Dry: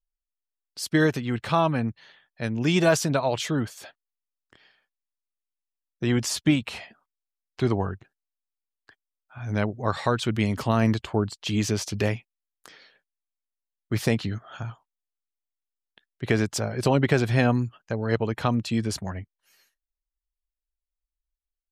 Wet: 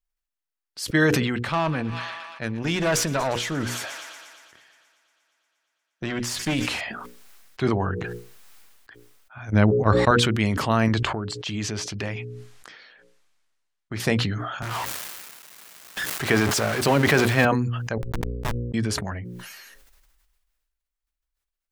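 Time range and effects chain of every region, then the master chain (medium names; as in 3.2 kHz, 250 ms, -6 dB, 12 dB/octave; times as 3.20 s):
1.49–6.81 s: valve stage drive 19 dB, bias 0.55 + feedback echo behind a high-pass 118 ms, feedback 81%, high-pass 1.4 kHz, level -16 dB
9.50–10.11 s: gate -28 dBFS, range -22 dB + bass shelf 450 Hz +9.5 dB
10.88–14.00 s: low-pass 8.1 kHz + compression 2:1, threshold -29 dBFS
14.62–17.45 s: jump at every zero crossing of -24.5 dBFS + high-pass 150 Hz 6 dB/octave
17.98–18.74 s: peaking EQ 950 Hz +13.5 dB 0.21 oct + Schmitt trigger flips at -17.5 dBFS
whole clip: peaking EQ 1.6 kHz +4.5 dB 1.5 oct; hum notches 60/120/180/240/300/360/420/480/540 Hz; decay stretcher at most 31 dB/s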